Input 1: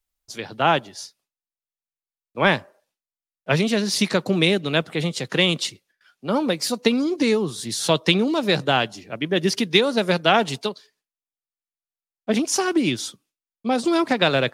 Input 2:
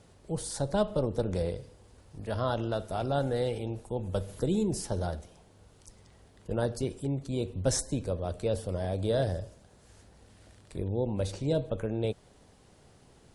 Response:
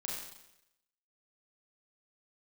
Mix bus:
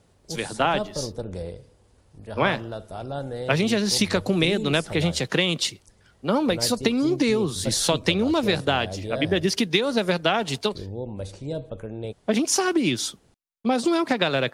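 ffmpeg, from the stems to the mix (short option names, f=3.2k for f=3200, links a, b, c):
-filter_complex "[0:a]agate=range=-6dB:threshold=-43dB:ratio=16:detection=peak,acompressor=threshold=-20dB:ratio=6,volume=2.5dB[a];[1:a]volume=-2.5dB[b];[a][b]amix=inputs=2:normalize=0"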